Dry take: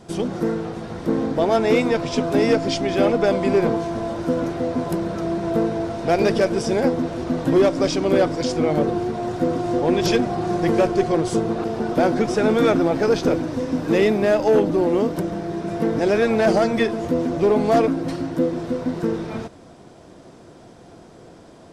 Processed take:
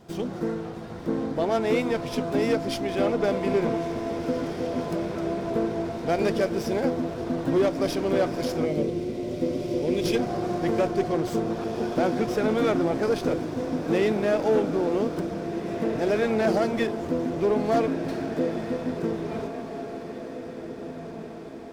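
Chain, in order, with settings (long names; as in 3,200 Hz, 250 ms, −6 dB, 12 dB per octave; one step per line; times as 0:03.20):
feedback delay with all-pass diffusion 1,929 ms, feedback 48%, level −10 dB
gain on a spectral selection 0:08.66–0:10.15, 630–1,900 Hz −11 dB
windowed peak hold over 3 samples
level −6 dB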